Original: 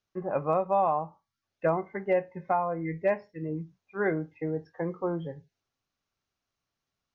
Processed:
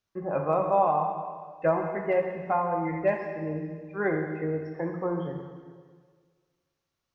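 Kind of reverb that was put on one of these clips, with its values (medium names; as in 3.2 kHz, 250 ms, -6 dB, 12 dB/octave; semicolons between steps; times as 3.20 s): plate-style reverb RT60 1.7 s, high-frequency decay 1×, DRR 2 dB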